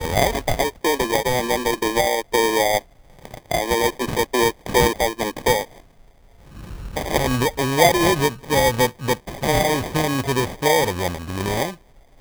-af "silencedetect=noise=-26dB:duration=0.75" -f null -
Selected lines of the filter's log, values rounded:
silence_start: 5.63
silence_end: 6.71 | silence_duration: 1.08